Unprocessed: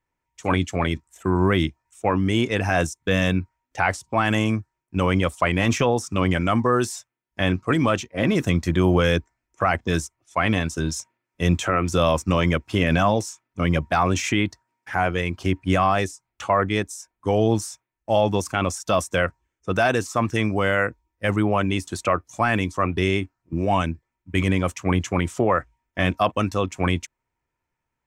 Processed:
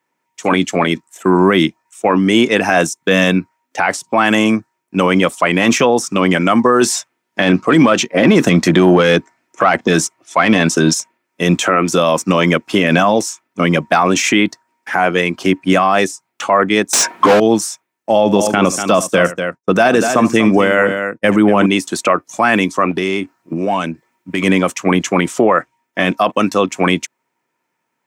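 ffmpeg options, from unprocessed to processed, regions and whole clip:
-filter_complex "[0:a]asettb=1/sr,asplit=3[a][b][c];[a]atrim=end=6.814[d];[b]atrim=start=6.81:end=10.94,asetpts=PTS-STARTPTS,afade=t=in:d=0.004:c=qsin,afade=t=out:st=4.126:d=0.004:c=qsin,acontrast=89,highshelf=f=8.7k:g=-8[e];[c]atrim=start=10.936[f];[d][e]acrossfade=d=0.004:c1=hsin:c2=qsin[g];[g][f]acrossfade=d=0.004:c1=qsin:c2=hsin,asettb=1/sr,asplit=3[h][i][j];[h]atrim=end=16.934[k];[i]atrim=start=16.93:end=17.4,asetpts=PTS-STARTPTS,afade=t=in:d=0.004:c=qsin,afade=t=out:st=0.466:d=0.004:c=qsin,bass=f=250:g=9,treble=f=4k:g=-3,asplit=2[l][m];[m]highpass=f=720:p=1,volume=45dB,asoftclip=type=tanh:threshold=-4dB[n];[l][n]amix=inputs=2:normalize=0,lowpass=f=1.7k:p=1,volume=-6dB[o];[j]atrim=start=17.396[p];[k][o]acrossfade=d=0.004:c1=hsin:c2=qsin[q];[q][p]acrossfade=d=0.004:c1=qsin:c2=hsin,asettb=1/sr,asplit=3[r][s][t];[r]atrim=end=18.114[u];[s]atrim=start=18.11:end=21.66,asetpts=PTS-STARTPTS,afade=t=in:d=0.004:c=qsin,afade=t=out:st=3.546:d=0.004:c=qsin,agate=range=-33dB:threshold=-38dB:ratio=3:release=100:detection=peak,lowshelf=f=430:g=6,aecho=1:1:74|241:0.119|0.282,atrim=end_sample=156555[v];[t]atrim=start=21.656[w];[u][v]acrossfade=d=0.004:c1=hsin:c2=qsin[x];[x][w]acrossfade=d=0.004:c1=qsin:c2=hsin,asettb=1/sr,asplit=3[y][z][aa];[y]atrim=end=22.914[ab];[z]atrim=start=22.91:end=24.43,asetpts=PTS-STARTPTS,afade=t=in:d=0.004:c=qsin,afade=t=out:st=1.516:d=0.004:c=qsin,acompressor=threshold=-35dB:ratio=2.5:attack=3.2:release=140:knee=1:detection=peak,aeval=exprs='0.178*sin(PI/2*1.41*val(0)/0.178)':c=same[ac];[aa]atrim=start=24.426[ad];[ab][ac]acrossfade=d=0.004:c1=hsin:c2=qsin[ae];[ae][ad]acrossfade=d=0.004:c1=qsin:c2=hsin,highpass=f=180:w=0.5412,highpass=f=180:w=1.3066,alimiter=level_in=12dB:limit=-1dB:release=50:level=0:latency=1,volume=-1dB"

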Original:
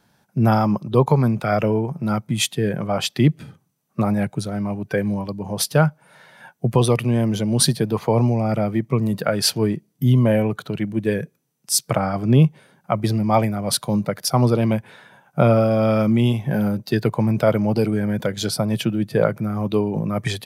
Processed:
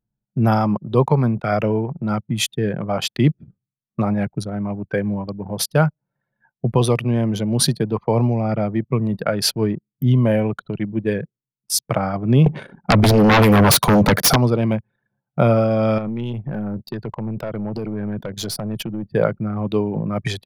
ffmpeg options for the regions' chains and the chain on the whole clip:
-filter_complex "[0:a]asettb=1/sr,asplit=3[a][b][c];[a]atrim=end=12.464[d];[b]atrim=start=12.46:end=14.36,asetpts=PTS-STARTPTS,afade=t=in:d=0.004:c=qsin,afade=t=out:st=1.896:d=0.004:c=qsin,bandreject=f=5k:w=15,acompressor=threshold=-20dB:ratio=5:attack=3.2:release=140:knee=1:detection=peak,aeval=exprs='0.355*sin(PI/2*5.62*val(0)/0.355)':c=same[e];[c]atrim=start=14.356[f];[d][e]acrossfade=d=0.004:c1=hsin:c2=qsin[g];[g][f]acrossfade=d=0.004:c1=qsin:c2=hsin,asettb=1/sr,asplit=3[h][i][j];[h]atrim=end=15.984[k];[i]atrim=start=15.98:end=19.07,asetpts=PTS-STARTPTS,afade=t=in:d=0.004:c=qsin,afade=t=out:st=3.086:d=0.004:c=qsin,highshelf=f=6.7k:g=5.5,acompressor=threshold=-19dB:ratio=16:attack=3.2:release=140:knee=1:detection=peak,aeval=exprs='(tanh(8.91*val(0)+0.25)-tanh(0.25))/8.91':c=same[l];[j]atrim=start=19.066[m];[k][l]acrossfade=d=0.004:c1=hsin:c2=qsin[n];[n][m]acrossfade=d=0.004:c1=qsin:c2=hsin,anlmdn=39.8,equalizer=f=8.1k:w=5.9:g=-6.5"

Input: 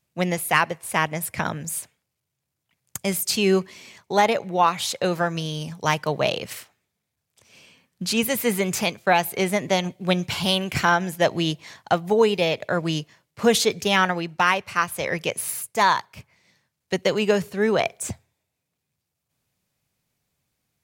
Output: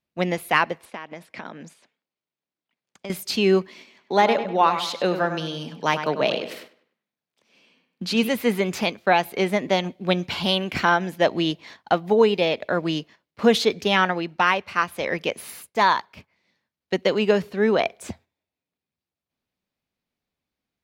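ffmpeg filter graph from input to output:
-filter_complex "[0:a]asettb=1/sr,asplit=3[a][b][c];[a]atrim=end=0.854[d];[b]atrim=start=0.85:end=3.1,asetpts=PTS-STARTPTS,afade=t=in:d=0.004:c=qsin,afade=t=out:st=2.246:d=0.004:c=qsin,acompressor=threshold=-31dB:ratio=5:attack=3.2:release=140:knee=1:detection=peak,highpass=190,lowpass=6.5k[e];[c]atrim=start=3.096[f];[d][e]acrossfade=d=0.004:c1=hsin:c2=qsin[g];[g][f]acrossfade=d=0.004:c1=qsin:c2=hsin,asettb=1/sr,asplit=3[h][i][j];[h]atrim=end=3.684[k];[i]atrim=start=3.68:end=8.29,asetpts=PTS-STARTPTS,afade=t=in:d=0.004:c=qsin,afade=t=out:st=4.606:d=0.004:c=qsin,highpass=f=130:w=0.5412,highpass=f=130:w=1.3066,asplit=2[l][m];[m]adelay=99,lowpass=f=3.6k:p=1,volume=-9dB,asplit=2[n][o];[o]adelay=99,lowpass=f=3.6k:p=1,volume=0.41,asplit=2[p][q];[q]adelay=99,lowpass=f=3.6k:p=1,volume=0.41,asplit=2[r][s];[s]adelay=99,lowpass=f=3.6k:p=1,volume=0.41,asplit=2[t][u];[u]adelay=99,lowpass=f=3.6k:p=1,volume=0.41[v];[l][n][p][r][t][v]amix=inputs=6:normalize=0,atrim=end_sample=203301[w];[j]atrim=start=8.286[x];[k][w]acrossfade=d=0.004:c1=hsin:c2=qsin[y];[y][x]acrossfade=d=0.004:c1=qsin:c2=hsin,aemphasis=mode=reproduction:type=cd,agate=range=-7dB:threshold=-44dB:ratio=16:detection=peak,equalizer=f=125:t=o:w=1:g=-10,equalizer=f=250:t=o:w=1:g=5,equalizer=f=4k:t=o:w=1:g=4,equalizer=f=8k:t=o:w=1:g=-6"

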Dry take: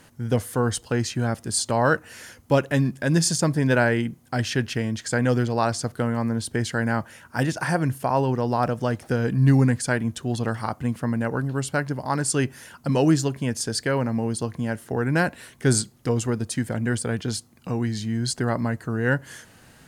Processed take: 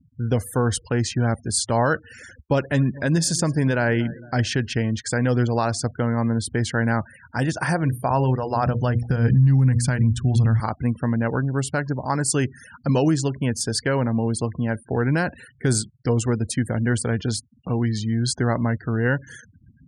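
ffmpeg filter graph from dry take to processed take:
-filter_complex "[0:a]asettb=1/sr,asplit=3[a][b][c];[a]atrim=end=2.064[d];[b]atrim=start=2.06:end=4.48,asetpts=PTS-STARTPTS,afade=t=in:d=0.004:c=qsin,afade=t=out:st=2.416:d=0.004:c=qsin,acrusher=bits=7:mix=0:aa=0.5,aecho=1:1:228|456|684:0.0708|0.0361|0.0184,atrim=end_sample=106722[e];[c]atrim=start=4.476[f];[d][e]acrossfade=d=0.004:c1=hsin:c2=qsin[g];[g][f]acrossfade=d=0.004:c1=qsin:c2=hsin,asettb=1/sr,asplit=3[h][i][j];[h]atrim=end=7.814[k];[i]atrim=start=7.81:end=10.6,asetpts=PTS-STARTPTS,afade=t=in:d=0.004:c=qsin,afade=t=out:st=2.786:d=0.004:c=qsin,bandreject=f=60:t=h:w=6,bandreject=f=120:t=h:w=6,bandreject=f=180:t=h:w=6,bandreject=f=240:t=h:w=6,bandreject=f=300:t=h:w=6,bandreject=f=360:t=h:w=6,bandreject=f=420:t=h:w=6,bandreject=f=480:t=h:w=6,bandreject=f=540:t=h:w=6,asubboost=boost=9:cutoff=160[l];[j]atrim=start=10.596[m];[k][l]acrossfade=d=0.004:c1=hsin:c2=qsin[n];[n][m]acrossfade=d=0.004:c1=qsin:c2=hsin,afftfilt=real='re*gte(hypot(re,im),0.0112)':imag='im*gte(hypot(re,im),0.0112)':win_size=1024:overlap=0.75,equalizer=f=70:t=o:w=0.96:g=7.5,alimiter=limit=-12.5dB:level=0:latency=1:release=150,volume=2dB"

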